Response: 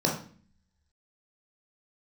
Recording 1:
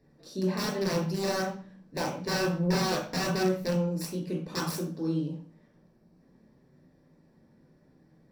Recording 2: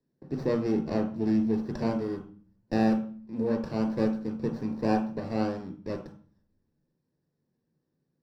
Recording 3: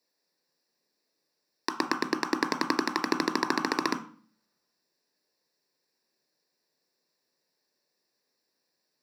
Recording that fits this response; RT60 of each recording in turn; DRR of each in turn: 1; 0.45, 0.45, 0.45 seconds; −1.5, 3.0, 7.5 decibels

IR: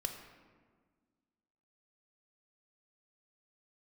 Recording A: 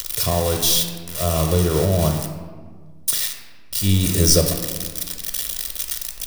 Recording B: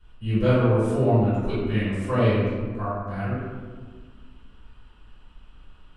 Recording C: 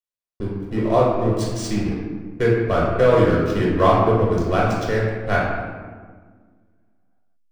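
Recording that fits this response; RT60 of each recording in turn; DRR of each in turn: A; 1.6, 1.6, 1.6 seconds; 3.5, −15.0, −5.5 decibels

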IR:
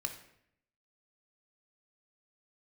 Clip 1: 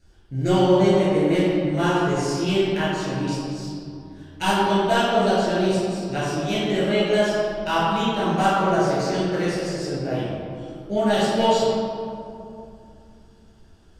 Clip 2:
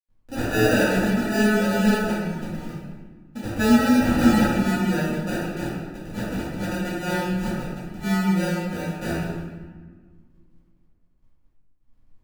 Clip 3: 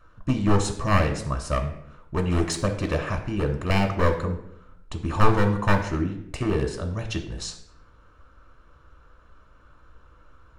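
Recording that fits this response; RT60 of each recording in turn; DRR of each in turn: 3; 2.7, 1.5, 0.70 seconds; −10.0, −12.0, 4.0 decibels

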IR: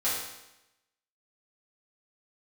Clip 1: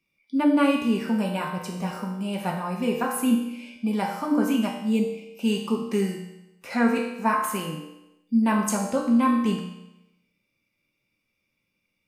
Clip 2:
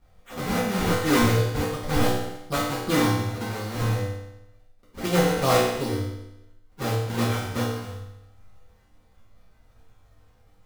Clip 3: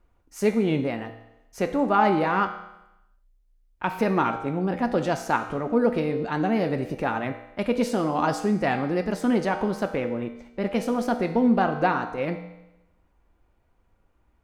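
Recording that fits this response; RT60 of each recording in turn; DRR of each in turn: 2; 0.90, 0.90, 0.90 seconds; −1.5, −11.0, 5.5 decibels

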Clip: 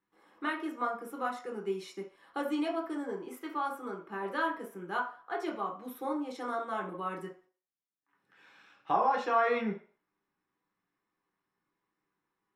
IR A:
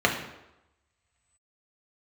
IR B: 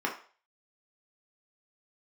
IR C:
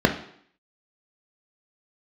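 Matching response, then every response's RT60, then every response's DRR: B; 0.95, 0.40, 0.65 seconds; −0.5, −1.5, 3.5 decibels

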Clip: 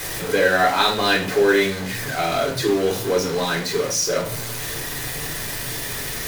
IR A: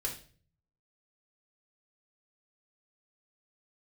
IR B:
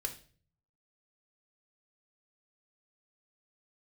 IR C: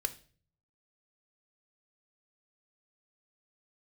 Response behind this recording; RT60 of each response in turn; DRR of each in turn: A; 0.45, 0.45, 0.45 seconds; −1.0, 4.0, 9.0 decibels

